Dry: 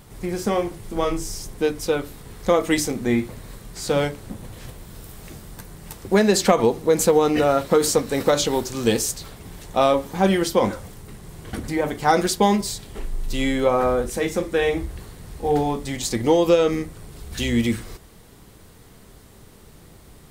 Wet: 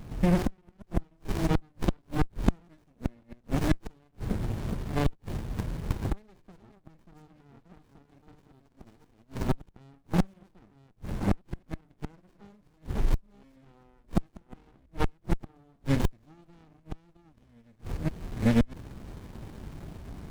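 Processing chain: chunks repeated in reverse 646 ms, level -5 dB; inverted gate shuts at -16 dBFS, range -41 dB; sliding maximum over 65 samples; trim +5.5 dB

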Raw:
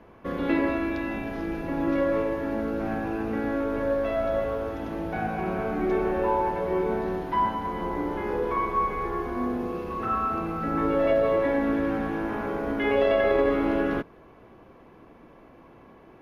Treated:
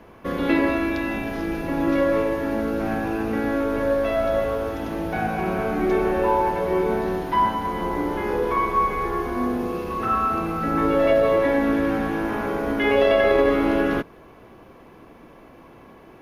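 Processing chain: treble shelf 3.8 kHz +8.5 dB; trim +4 dB

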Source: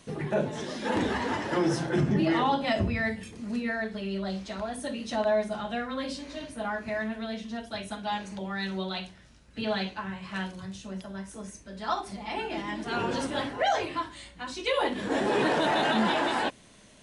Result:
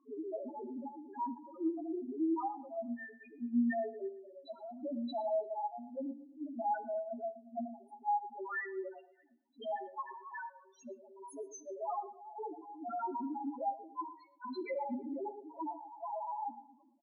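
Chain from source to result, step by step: recorder AGC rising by 8.8 dB/s; comb 7.3 ms, depth 54%; peak limiter -21.5 dBFS, peak gain reduction 9 dB; trance gate "xxxxxx..x.." 103 bpm -12 dB; rippled Chebyshev high-pass 230 Hz, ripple 6 dB; loudest bins only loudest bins 1; feedback echo behind a low-pass 114 ms, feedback 36%, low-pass 1.7 kHz, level -16 dB; on a send at -18 dB: reverberation, pre-delay 3 ms; on the sum: attacks held to a fixed rise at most 420 dB/s; trim +5 dB

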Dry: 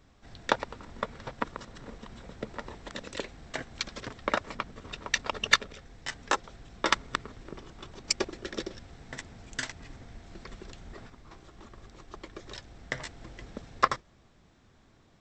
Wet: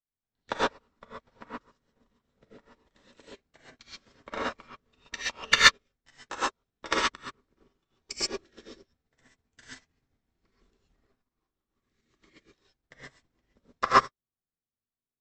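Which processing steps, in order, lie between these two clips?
11.75–12.40 s: graphic EQ 125/250/1000/2000/4000/8000 Hz +5/+7/-6/+11/+5/+8 dB; gated-style reverb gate 160 ms rising, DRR -6.5 dB; upward expansion 2.5:1, over -46 dBFS; trim +2.5 dB

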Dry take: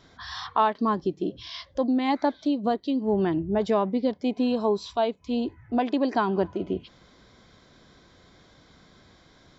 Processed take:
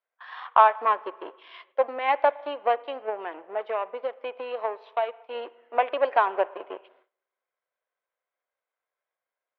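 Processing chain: 3.09–5.35 s: compression, threshold -24 dBFS, peak gain reduction 6.5 dB; power-law waveshaper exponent 1.4; spring tank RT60 1.3 s, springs 38/56 ms, chirp 80 ms, DRR 19.5 dB; gate with hold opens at -42 dBFS; elliptic band-pass 520–2700 Hz, stop band 60 dB; trim +8 dB

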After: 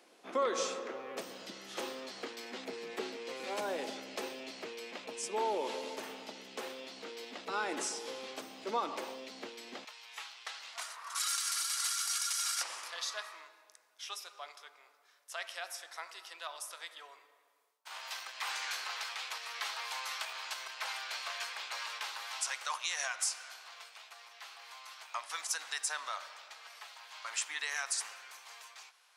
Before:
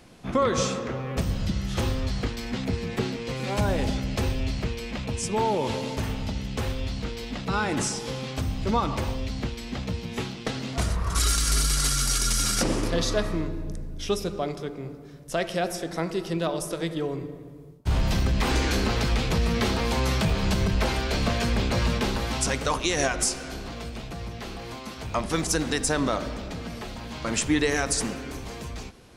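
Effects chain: high-pass 330 Hz 24 dB/octave, from 9.85 s 910 Hz; trim -8 dB

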